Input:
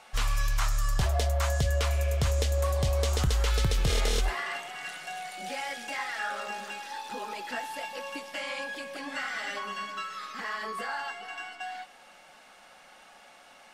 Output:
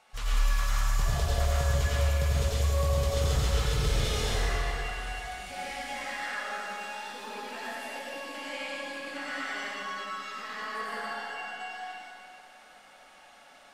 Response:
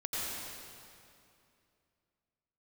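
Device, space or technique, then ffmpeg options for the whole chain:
stairwell: -filter_complex "[1:a]atrim=start_sample=2205[a];[0:a][a]afir=irnorm=-1:irlink=0,volume=-5.5dB"

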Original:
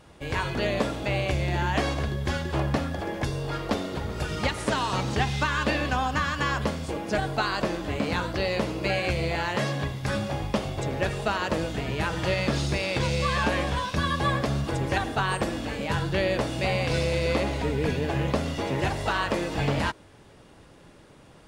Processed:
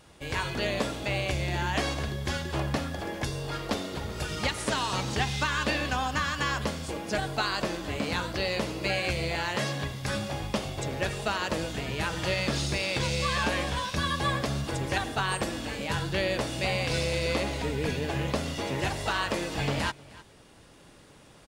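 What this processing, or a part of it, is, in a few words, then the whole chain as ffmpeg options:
ducked delay: -filter_complex "[0:a]highshelf=f=2.6k:g=7.5,asplit=3[a][b][c];[b]adelay=308,volume=-5dB[d];[c]apad=whole_len=960430[e];[d][e]sidechaincompress=threshold=-43dB:ratio=6:attack=16:release=632[f];[a][f]amix=inputs=2:normalize=0,volume=-4dB"

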